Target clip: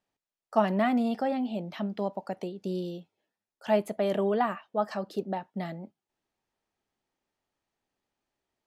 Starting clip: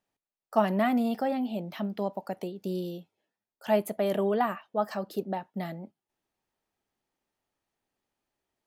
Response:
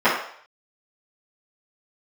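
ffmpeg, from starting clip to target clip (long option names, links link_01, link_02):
-af "lowpass=8000"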